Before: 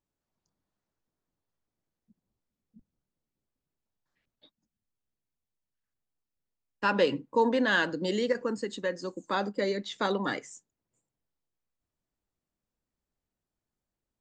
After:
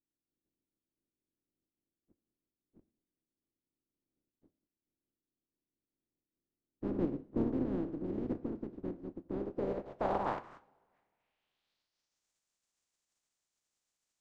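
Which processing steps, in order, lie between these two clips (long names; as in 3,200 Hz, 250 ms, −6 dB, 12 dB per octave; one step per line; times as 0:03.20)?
compressing power law on the bin magnitudes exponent 0.12
low-pass filter sweep 310 Hz → 7,200 Hz, 0:09.27–0:12.29
coupled-rooms reverb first 0.51 s, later 2.1 s, from −20 dB, DRR 14 dB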